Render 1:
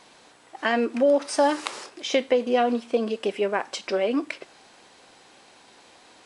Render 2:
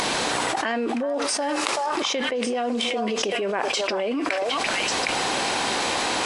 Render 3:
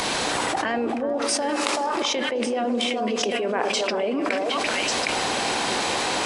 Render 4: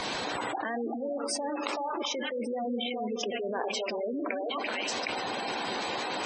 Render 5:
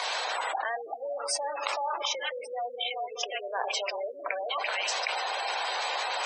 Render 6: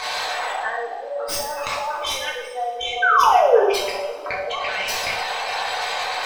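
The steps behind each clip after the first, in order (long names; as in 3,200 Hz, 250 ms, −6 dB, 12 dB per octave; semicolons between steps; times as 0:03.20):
upward compression, threshold −34 dBFS; echo through a band-pass that steps 381 ms, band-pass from 950 Hz, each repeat 1.4 octaves, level −2.5 dB; envelope flattener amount 100%; level −8.5 dB
on a send: bucket-brigade delay 210 ms, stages 1,024, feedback 73%, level −8 dB; on the sum: multiband upward and downward expander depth 40%
gate on every frequency bin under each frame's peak −15 dB strong; level −7.5 dB
inverse Chebyshev high-pass filter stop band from 220 Hz, stop band 50 dB; level +3 dB
stylus tracing distortion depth 0.06 ms; sound drawn into the spectrogram fall, 0:03.02–0:03.64, 370–1,600 Hz −20 dBFS; coupled-rooms reverb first 0.73 s, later 3.4 s, from −20 dB, DRR −5 dB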